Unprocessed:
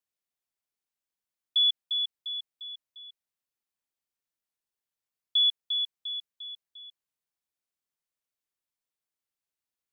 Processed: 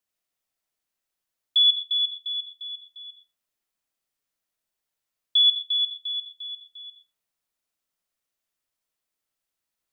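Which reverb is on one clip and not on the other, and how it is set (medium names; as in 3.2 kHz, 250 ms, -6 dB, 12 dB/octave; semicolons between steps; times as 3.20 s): algorithmic reverb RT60 0.47 s, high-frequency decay 0.45×, pre-delay 35 ms, DRR 2 dB; trim +4.5 dB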